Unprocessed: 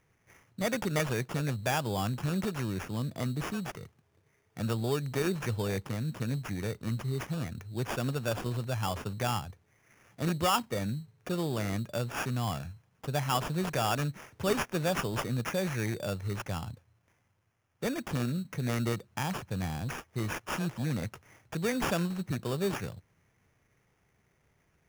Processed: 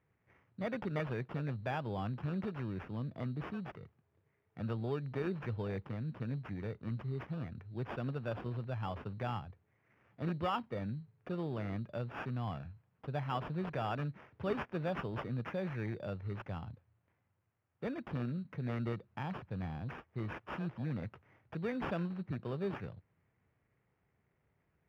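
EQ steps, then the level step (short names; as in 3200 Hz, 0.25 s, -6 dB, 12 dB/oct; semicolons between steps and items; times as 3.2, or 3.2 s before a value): HPF 49 Hz; air absorption 390 m; -5.5 dB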